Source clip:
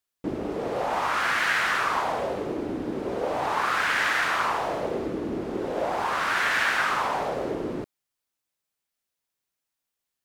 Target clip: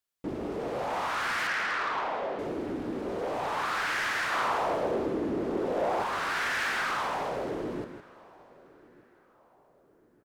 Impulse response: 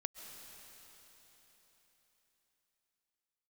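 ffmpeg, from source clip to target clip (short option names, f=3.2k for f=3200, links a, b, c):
-filter_complex "[0:a]asettb=1/sr,asplit=3[a][b][c];[a]atrim=end=1.474[d];[b]atrim=start=1.47:end=2.39,asetpts=PTS-STARTPTS,afade=t=in:d=0.004:c=qsin,afade=t=out:st=0.916:d=0.004:c=qsin,highpass=230,lowpass=3.3k[e];[c]atrim=start=2.386[f];[d][e]acrossfade=d=0.004:c1=hsin:c2=qsin[g];[g][f]acrossfade=d=0.004:c1=qsin:c2=hsin,asplit=2[h][i];[i]aecho=0:1:160:0.316[j];[h][j]amix=inputs=2:normalize=0,asoftclip=type=tanh:threshold=-22dB,asettb=1/sr,asplit=3[k][l][m];[k]atrim=end=4.324[n];[l]atrim=start=4.32:end=6.03,asetpts=PTS-STARTPTS,afade=t=in:d=0.004:c=qsin,afade=t=out:st=1.706:d=0.004:c=qsin,equalizer=f=530:w=0.49:g=4.5[o];[m]atrim=start=6.026[p];[n][o]acrossfade=d=0.004:c1=hsin:c2=qsin[q];[q][p]acrossfade=d=0.004:c1=qsin:c2=hsin,asplit=2[r][s];[s]adelay=1192,lowpass=f=1.1k:p=1,volume=-23dB,asplit=2[t][u];[u]adelay=1192,lowpass=f=1.1k:p=1,volume=0.52,asplit=2[v][w];[w]adelay=1192,lowpass=f=1.1k:p=1,volume=0.52[x];[r][t][v][x]amix=inputs=4:normalize=0,asplit=2[y][z];[1:a]atrim=start_sample=2205,asetrate=36162,aresample=44100[aa];[z][aa]afir=irnorm=-1:irlink=0,volume=-16.5dB[ab];[y][ab]amix=inputs=2:normalize=0,volume=-4dB"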